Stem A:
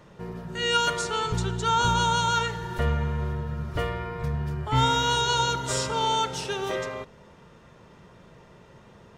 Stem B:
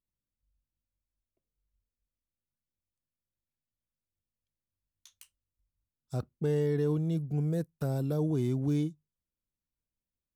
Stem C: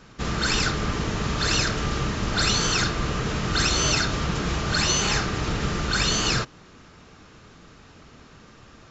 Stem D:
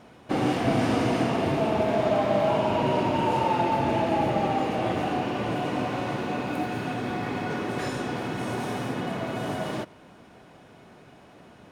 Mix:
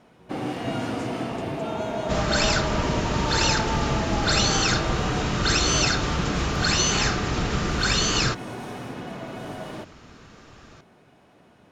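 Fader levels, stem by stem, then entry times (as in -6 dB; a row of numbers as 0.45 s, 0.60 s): -17.0 dB, mute, +0.5 dB, -5.0 dB; 0.00 s, mute, 1.90 s, 0.00 s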